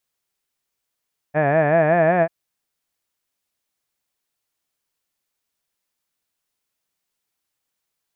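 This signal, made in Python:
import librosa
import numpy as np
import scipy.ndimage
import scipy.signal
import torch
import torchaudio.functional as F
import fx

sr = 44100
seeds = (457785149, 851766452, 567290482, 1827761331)

y = fx.vowel(sr, seeds[0], length_s=0.94, word='had', hz=144.0, glide_st=3.5, vibrato_hz=5.3, vibrato_st=1.2)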